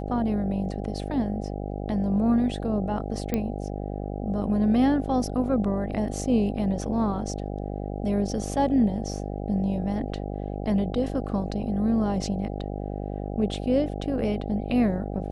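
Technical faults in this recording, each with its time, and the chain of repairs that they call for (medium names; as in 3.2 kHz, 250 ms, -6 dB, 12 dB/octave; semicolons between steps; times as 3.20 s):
buzz 50 Hz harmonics 16 -32 dBFS
3.34 s: pop -13 dBFS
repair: de-click; de-hum 50 Hz, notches 16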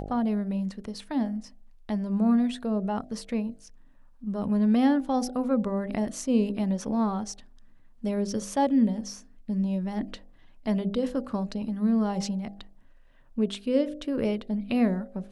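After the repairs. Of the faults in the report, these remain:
nothing left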